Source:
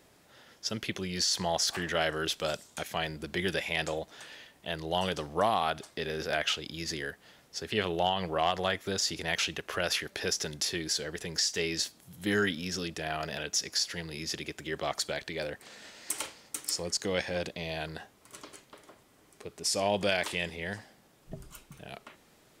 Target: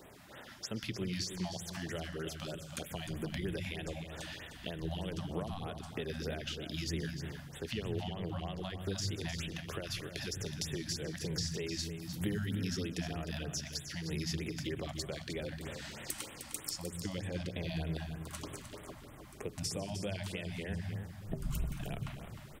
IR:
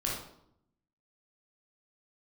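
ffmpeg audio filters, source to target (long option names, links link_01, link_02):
-filter_complex "[0:a]acompressor=threshold=-40dB:ratio=6,asplit=2[link_01][link_02];[link_02]asubboost=boost=9:cutoff=150[link_03];[1:a]atrim=start_sample=2205,adelay=124[link_04];[link_03][link_04]afir=irnorm=-1:irlink=0,volume=-19dB[link_05];[link_01][link_05]amix=inputs=2:normalize=0,acrossover=split=470|3000[link_06][link_07][link_08];[link_07]acompressor=threshold=-54dB:ratio=4[link_09];[link_06][link_09][link_08]amix=inputs=3:normalize=0,equalizer=frequency=7900:width=0.46:gain=-5,aecho=1:1:306:0.335,afftfilt=real='re*(1-between(b*sr/1024,370*pow(5600/370,0.5+0.5*sin(2*PI*3.2*pts/sr))/1.41,370*pow(5600/370,0.5+0.5*sin(2*PI*3.2*pts/sr))*1.41))':imag='im*(1-between(b*sr/1024,370*pow(5600/370,0.5+0.5*sin(2*PI*3.2*pts/sr))/1.41,370*pow(5600/370,0.5+0.5*sin(2*PI*3.2*pts/sr))*1.41))':win_size=1024:overlap=0.75,volume=7dB"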